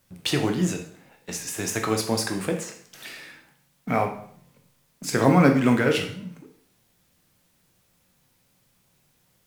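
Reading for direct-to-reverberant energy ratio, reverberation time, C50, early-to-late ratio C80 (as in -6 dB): 3.5 dB, 0.55 s, 7.5 dB, 12.0 dB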